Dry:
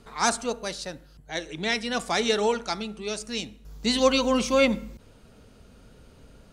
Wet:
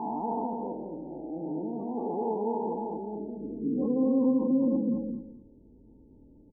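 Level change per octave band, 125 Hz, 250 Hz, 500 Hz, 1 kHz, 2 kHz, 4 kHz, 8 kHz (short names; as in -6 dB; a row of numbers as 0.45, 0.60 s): -1.5 dB, +2.5 dB, -6.0 dB, -5.0 dB, under -40 dB, under -40 dB, under -40 dB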